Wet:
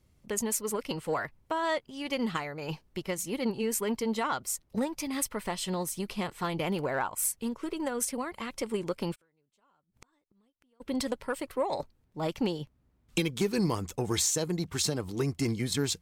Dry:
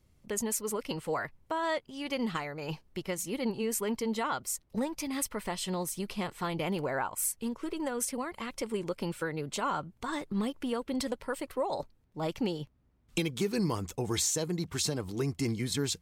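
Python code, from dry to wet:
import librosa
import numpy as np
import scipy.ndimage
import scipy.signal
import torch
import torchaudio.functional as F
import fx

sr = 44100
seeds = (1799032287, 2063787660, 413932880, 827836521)

y = fx.cheby_harmonics(x, sr, harmonics=(2, 7), levels_db=(-30, -31), full_scale_db=-16.0)
y = fx.gate_flip(y, sr, shuts_db=-35.0, range_db=-40, at=(9.14, 10.8), fade=0.02)
y = y * librosa.db_to_amplitude(2.5)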